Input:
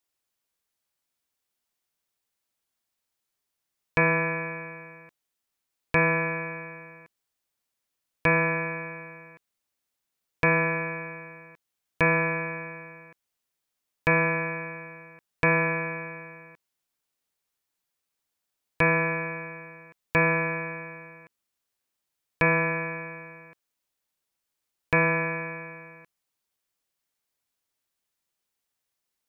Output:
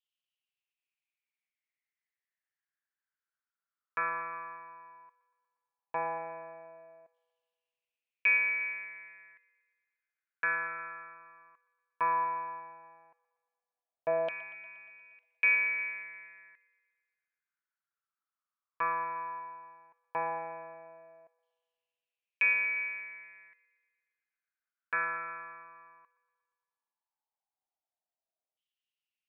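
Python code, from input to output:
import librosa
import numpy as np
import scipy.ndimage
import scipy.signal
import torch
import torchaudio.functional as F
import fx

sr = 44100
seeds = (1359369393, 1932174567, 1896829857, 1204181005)

y = fx.filter_lfo_bandpass(x, sr, shape='saw_down', hz=0.14, low_hz=640.0, high_hz=3100.0, q=7.7)
y = fx.echo_wet_bandpass(y, sr, ms=118, feedback_pct=63, hz=1500.0, wet_db=-14.5)
y = F.gain(torch.from_numpy(y), 4.0).numpy()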